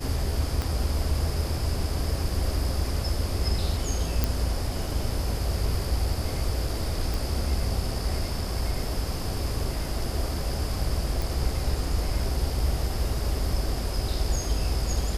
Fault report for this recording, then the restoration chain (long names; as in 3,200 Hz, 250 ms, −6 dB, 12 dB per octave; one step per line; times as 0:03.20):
0:00.62: click −15 dBFS
0:04.24: click
0:07.14: click
0:11.22: click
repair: click removal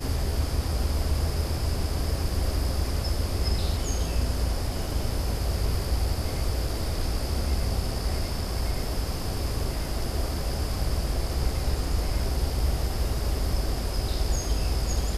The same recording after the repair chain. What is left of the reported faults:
0:00.62: click